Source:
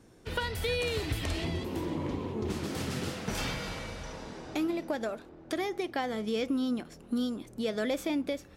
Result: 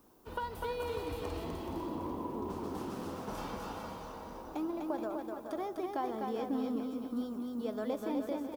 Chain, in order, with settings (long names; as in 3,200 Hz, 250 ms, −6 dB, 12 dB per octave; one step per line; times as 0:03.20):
background noise white −59 dBFS
octave-band graphic EQ 125/250/1,000/2,000/4,000/8,000 Hz −8/+4/+11/−10/−5/−6 dB
bouncing-ball delay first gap 250 ms, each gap 0.7×, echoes 5
level −8.5 dB